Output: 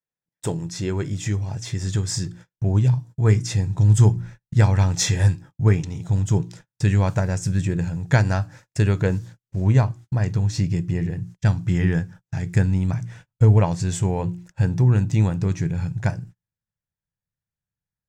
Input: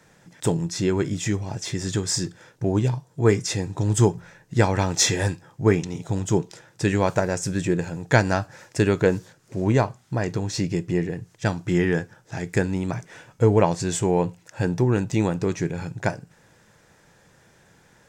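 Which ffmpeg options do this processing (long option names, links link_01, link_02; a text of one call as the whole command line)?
ffmpeg -i in.wav -af "bandreject=frequency=58.81:width_type=h:width=4,bandreject=frequency=117.62:width_type=h:width=4,bandreject=frequency=176.43:width_type=h:width=4,bandreject=frequency=235.24:width_type=h:width=4,bandreject=frequency=294.05:width_type=h:width=4,bandreject=frequency=352.86:width_type=h:width=4,agate=range=-39dB:threshold=-42dB:ratio=16:detection=peak,asubboost=boost=8:cutoff=130,volume=-3dB" out.wav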